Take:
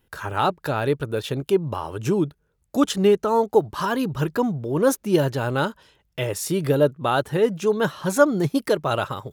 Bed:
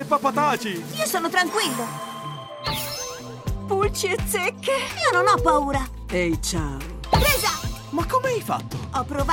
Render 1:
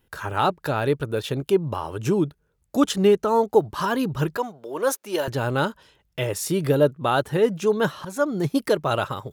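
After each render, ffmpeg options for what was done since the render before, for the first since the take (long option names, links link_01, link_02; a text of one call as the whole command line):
ffmpeg -i in.wav -filter_complex "[0:a]asettb=1/sr,asplit=3[link_01][link_02][link_03];[link_01]atrim=end=4.374[link_04];[link_02]atrim=start=4.37:end=5.28,asetpts=PTS-STARTPTS,afade=type=in:duration=0.004:curve=qsin,afade=type=out:start_time=0.906:duration=0.004:curve=qsin,highpass=540[link_05];[link_03]atrim=start=5.276[link_06];[link_04][link_05]acrossfade=duration=0.004:curve1=hsin:curve2=qsin[link_07];[link_07][link_06]acrossfade=duration=0.004:curve1=qsin:curve2=hsin,asplit=2[link_08][link_09];[link_08]atrim=end=8.05,asetpts=PTS-STARTPTS,afade=type=out:start_time=8.046:duration=0.004:curve=hsin:silence=0.199526[link_10];[link_09]atrim=start=8.05,asetpts=PTS-STARTPTS,afade=type=in:duration=0.51:silence=0.199526[link_11];[link_10][link_11]concat=n=2:v=0:a=1" out.wav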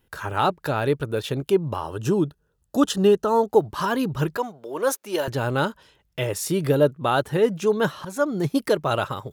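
ffmpeg -i in.wav -filter_complex "[0:a]asettb=1/sr,asplit=3[link_01][link_02][link_03];[link_01]atrim=end=1.814[link_04];[link_02]atrim=start=1.81:end=3.5,asetpts=PTS-STARTPTS,afade=type=in:duration=0.004:curve=qsin,afade=type=out:start_time=1.686:duration=0.004:curve=qsin,asuperstop=centerf=2200:order=4:qfactor=4[link_05];[link_03]atrim=start=3.496[link_06];[link_04][link_05]acrossfade=duration=0.004:curve1=hsin:curve2=qsin[link_07];[link_07][link_06]acrossfade=duration=0.004:curve1=qsin:curve2=hsin" out.wav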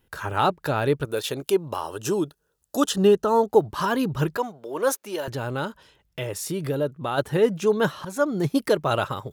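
ffmpeg -i in.wav -filter_complex "[0:a]asettb=1/sr,asplit=3[link_01][link_02][link_03];[link_01]atrim=end=1.054[link_04];[link_02]atrim=start=1.05:end=2.9,asetpts=PTS-STARTPTS,afade=type=in:duration=0.004:curve=qsin,afade=type=out:start_time=1.846:duration=0.004:curve=qsin,bass=frequency=250:gain=-10,treble=frequency=4000:gain=7[link_05];[link_03]atrim=start=2.896[link_06];[link_04][link_05]acrossfade=duration=0.004:curve1=hsin:curve2=qsin[link_07];[link_07][link_06]acrossfade=duration=0.004:curve1=qsin:curve2=hsin,asplit=3[link_08][link_09][link_10];[link_08]afade=type=out:start_time=5.08:duration=0.02[link_11];[link_09]acompressor=threshold=-33dB:ratio=1.5:attack=3.2:release=140:knee=1:detection=peak,afade=type=in:start_time=5.08:duration=0.02,afade=type=out:start_time=7.17:duration=0.02[link_12];[link_10]afade=type=in:start_time=7.17:duration=0.02[link_13];[link_11][link_12][link_13]amix=inputs=3:normalize=0" out.wav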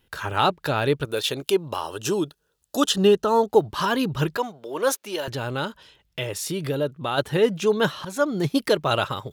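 ffmpeg -i in.wav -af "equalizer=frequency=3400:width_type=o:width=1.4:gain=6.5" out.wav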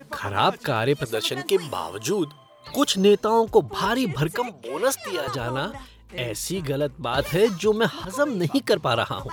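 ffmpeg -i in.wav -i bed.wav -filter_complex "[1:a]volume=-15.5dB[link_01];[0:a][link_01]amix=inputs=2:normalize=0" out.wav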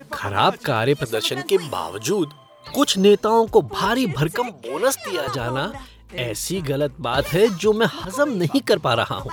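ffmpeg -i in.wav -af "volume=3dB,alimiter=limit=-3dB:level=0:latency=1" out.wav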